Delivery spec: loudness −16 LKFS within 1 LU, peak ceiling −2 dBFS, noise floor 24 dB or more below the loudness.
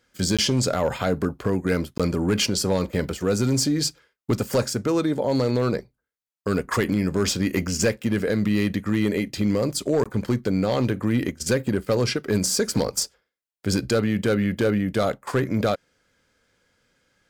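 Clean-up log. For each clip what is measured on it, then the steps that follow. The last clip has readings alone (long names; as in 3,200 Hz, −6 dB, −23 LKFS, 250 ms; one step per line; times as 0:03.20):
share of clipped samples 0.6%; peaks flattened at −13.5 dBFS; number of dropouts 3; longest dropout 16 ms; integrated loudness −23.5 LKFS; sample peak −13.5 dBFS; target loudness −16.0 LKFS
→ clipped peaks rebuilt −13.5 dBFS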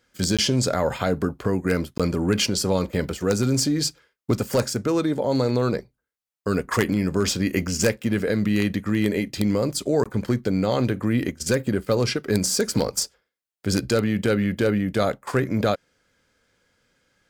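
share of clipped samples 0.0%; number of dropouts 3; longest dropout 16 ms
→ repair the gap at 0:00.37/0:01.98/0:10.04, 16 ms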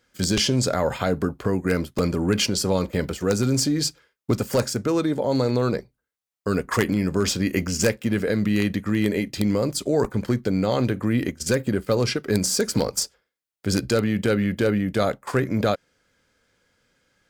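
number of dropouts 0; integrated loudness −23.5 LKFS; sample peak −4.5 dBFS; target loudness −16.0 LKFS
→ level +7.5 dB
brickwall limiter −2 dBFS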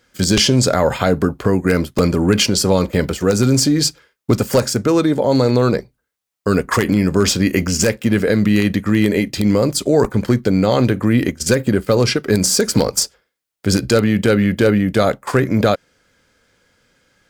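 integrated loudness −16.0 LKFS; sample peak −2.0 dBFS; background noise floor −76 dBFS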